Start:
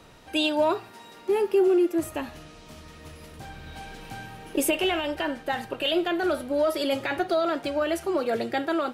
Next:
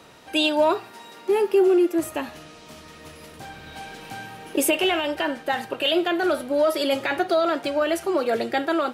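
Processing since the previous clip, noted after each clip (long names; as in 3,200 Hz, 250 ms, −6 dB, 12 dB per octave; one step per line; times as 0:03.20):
high-pass filter 210 Hz 6 dB per octave
level +4 dB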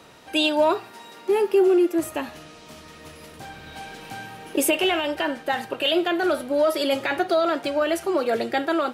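no processing that can be heard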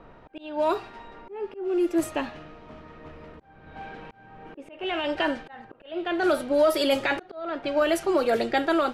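background noise brown −53 dBFS
volume swells 471 ms
low-pass that shuts in the quiet parts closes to 1,300 Hz, open at −18.5 dBFS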